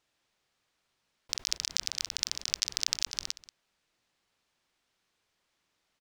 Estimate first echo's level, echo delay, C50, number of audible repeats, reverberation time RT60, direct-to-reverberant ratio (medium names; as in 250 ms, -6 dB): -17.5 dB, 184 ms, no reverb, 1, no reverb, no reverb